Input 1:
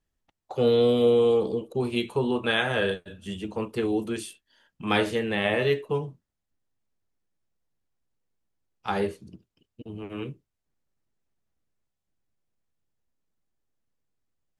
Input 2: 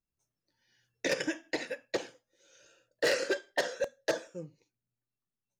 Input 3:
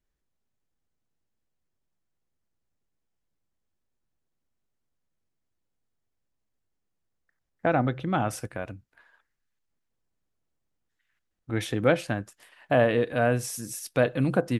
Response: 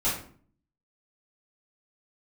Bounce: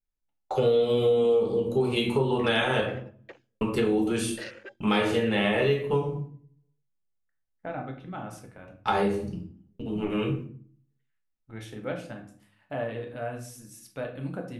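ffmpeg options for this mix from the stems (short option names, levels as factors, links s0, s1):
-filter_complex "[0:a]agate=range=0.0316:threshold=0.00316:ratio=16:detection=peak,volume=1.26,asplit=3[s0][s1][s2];[s0]atrim=end=2.81,asetpts=PTS-STARTPTS,afade=t=out:st=2.806:d=0.004:c=hsin[s3];[s1]atrim=start=2.81:end=3.61,asetpts=PTS-STARTPTS,volume=0[s4];[s2]atrim=start=3.61,asetpts=PTS-STARTPTS,afade=t=in:d=0.004:c=hsin[s5];[s3][s4][s5]concat=n=3:v=0:a=1,asplit=2[s6][s7];[s7]volume=0.473[s8];[1:a]afwtdn=0.01,equalizer=f=2600:t=o:w=2.5:g=9,adelay=1350,volume=0.141[s9];[2:a]volume=0.178,asplit=2[s10][s11];[s11]volume=0.299[s12];[3:a]atrim=start_sample=2205[s13];[s8][s12]amix=inputs=2:normalize=0[s14];[s14][s13]afir=irnorm=-1:irlink=0[s15];[s6][s9][s10][s15]amix=inputs=4:normalize=0,acompressor=threshold=0.0794:ratio=4"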